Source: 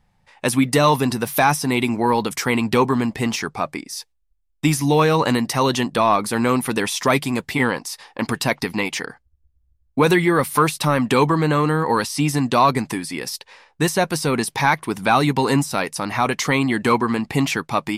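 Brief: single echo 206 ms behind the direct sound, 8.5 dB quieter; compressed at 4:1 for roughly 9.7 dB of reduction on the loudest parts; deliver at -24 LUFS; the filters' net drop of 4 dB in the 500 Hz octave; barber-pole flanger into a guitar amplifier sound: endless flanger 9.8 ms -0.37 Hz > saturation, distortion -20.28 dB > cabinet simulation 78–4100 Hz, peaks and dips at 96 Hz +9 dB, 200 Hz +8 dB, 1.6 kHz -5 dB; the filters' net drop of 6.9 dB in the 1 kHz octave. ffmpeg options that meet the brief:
-filter_complex "[0:a]equalizer=f=500:t=o:g=-3.5,equalizer=f=1000:t=o:g=-7,acompressor=threshold=0.0501:ratio=4,aecho=1:1:206:0.376,asplit=2[s0][s1];[s1]adelay=9.8,afreqshift=-0.37[s2];[s0][s2]amix=inputs=2:normalize=1,asoftclip=threshold=0.075,highpass=78,equalizer=f=96:t=q:w=4:g=9,equalizer=f=200:t=q:w=4:g=8,equalizer=f=1600:t=q:w=4:g=-5,lowpass=f=4100:w=0.5412,lowpass=f=4100:w=1.3066,volume=2.51"

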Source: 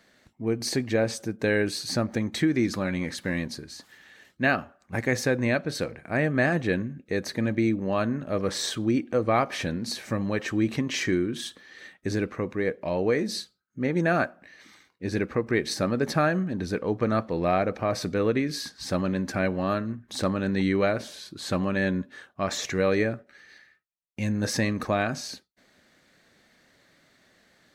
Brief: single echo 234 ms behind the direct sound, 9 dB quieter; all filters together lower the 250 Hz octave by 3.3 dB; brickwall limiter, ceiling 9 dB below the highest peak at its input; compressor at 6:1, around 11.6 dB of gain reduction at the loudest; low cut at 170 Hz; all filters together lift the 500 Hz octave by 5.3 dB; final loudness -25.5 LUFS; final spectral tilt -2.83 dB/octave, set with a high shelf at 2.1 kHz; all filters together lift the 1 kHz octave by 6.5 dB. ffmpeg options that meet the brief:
-af "highpass=170,equalizer=f=250:t=o:g=-6,equalizer=f=500:t=o:g=6,equalizer=f=1000:t=o:g=5.5,highshelf=f=2100:g=7.5,acompressor=threshold=0.0501:ratio=6,alimiter=limit=0.0944:level=0:latency=1,aecho=1:1:234:0.355,volume=2.11"

